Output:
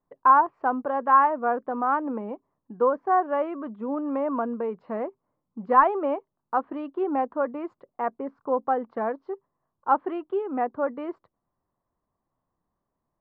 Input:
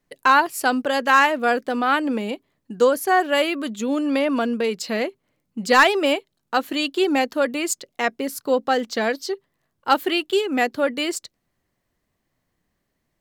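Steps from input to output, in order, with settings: ladder low-pass 1200 Hz, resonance 55%; gain +2.5 dB

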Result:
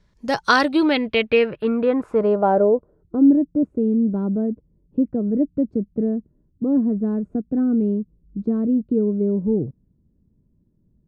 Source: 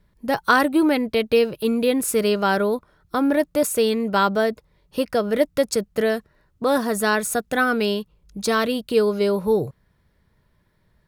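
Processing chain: low-pass sweep 6300 Hz -> 270 Hz, 0.38–3.39

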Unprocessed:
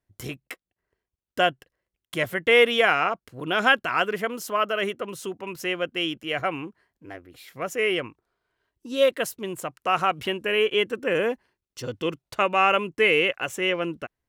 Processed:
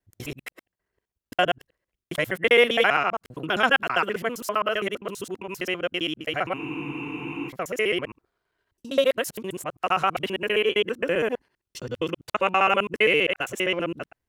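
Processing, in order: local time reversal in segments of 66 ms; spectral freeze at 6.6, 0.89 s

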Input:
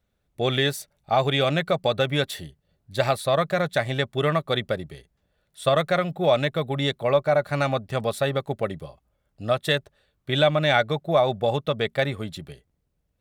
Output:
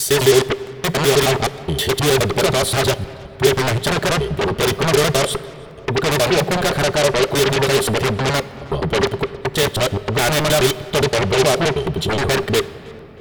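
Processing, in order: slices in reverse order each 0.105 s, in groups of 8; low shelf 160 Hz +8 dB; notch 520 Hz, Q 12; small resonant body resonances 400/3100 Hz, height 16 dB, ringing for 50 ms; in parallel at -5.5 dB: sine folder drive 16 dB, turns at -11 dBFS; on the sum: darkening echo 0.316 s, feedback 53%, low-pass 3700 Hz, level -23 dB; on a send at -15.5 dB: reverb RT60 3.2 s, pre-delay 6 ms; on the sum: crackling interface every 0.56 s, samples 64, repeat, from 0.67; gain -1 dB

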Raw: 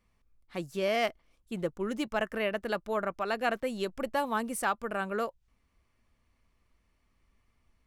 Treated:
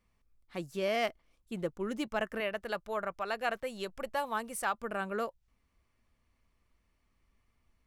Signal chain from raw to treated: 2.4–4.74 bell 270 Hz -8.5 dB 1 oct; gain -2.5 dB

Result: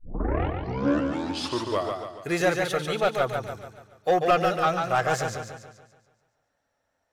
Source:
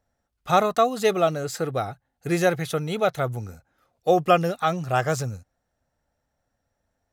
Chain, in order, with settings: tape start at the beginning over 2.10 s; overdrive pedal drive 16 dB, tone 3800 Hz, clips at -5 dBFS; warbling echo 0.143 s, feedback 48%, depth 72 cents, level -5 dB; gain -6.5 dB

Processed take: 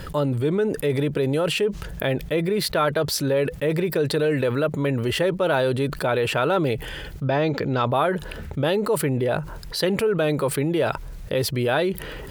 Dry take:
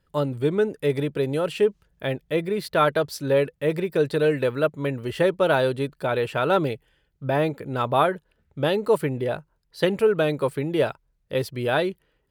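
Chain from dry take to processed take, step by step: 7.25–7.86 resonant high shelf 7300 Hz -11 dB, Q 3; fast leveller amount 70%; gain -4 dB

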